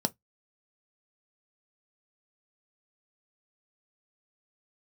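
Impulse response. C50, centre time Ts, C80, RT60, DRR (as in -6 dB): 30.0 dB, 3 ms, 47.5 dB, no single decay rate, 8.5 dB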